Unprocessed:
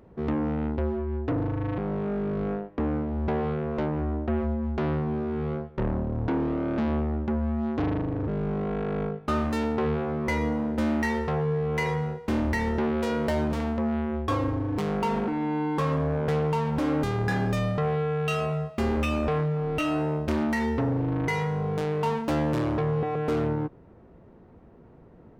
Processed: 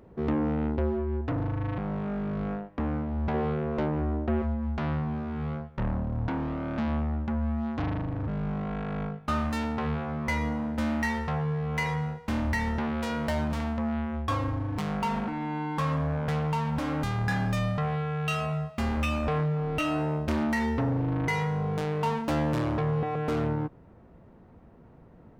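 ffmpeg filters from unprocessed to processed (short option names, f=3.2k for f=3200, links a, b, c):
-af "asetnsamples=n=441:p=0,asendcmd='1.21 equalizer g -9.5;3.34 equalizer g -1;4.42 equalizer g -13;19.27 equalizer g -5',equalizer=f=390:t=o:w=0.74:g=0.5"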